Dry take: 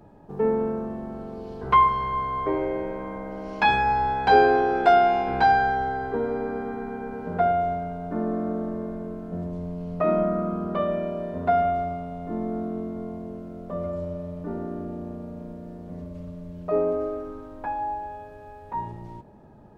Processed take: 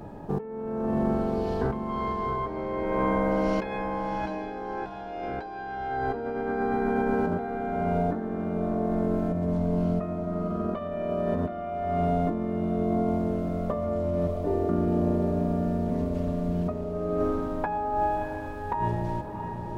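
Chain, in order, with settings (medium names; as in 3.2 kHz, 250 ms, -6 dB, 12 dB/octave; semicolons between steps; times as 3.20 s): 14.27–14.69 s: static phaser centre 520 Hz, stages 4; compressor with a negative ratio -34 dBFS, ratio -1; echo that smears into a reverb 681 ms, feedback 41%, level -7 dB; trim +3.5 dB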